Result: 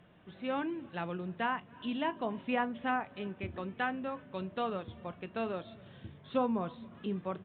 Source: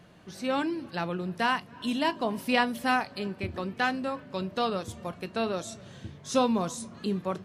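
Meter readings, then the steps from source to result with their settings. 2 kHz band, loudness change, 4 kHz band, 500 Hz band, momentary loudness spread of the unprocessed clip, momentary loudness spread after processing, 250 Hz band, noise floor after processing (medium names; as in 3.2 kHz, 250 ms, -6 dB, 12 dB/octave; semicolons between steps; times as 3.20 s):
-7.5 dB, -6.5 dB, -12.0 dB, -6.0 dB, 10 LU, 9 LU, -6.0 dB, -57 dBFS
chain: resampled via 8 kHz; low-pass that closes with the level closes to 1.7 kHz, closed at -21 dBFS; trim -6 dB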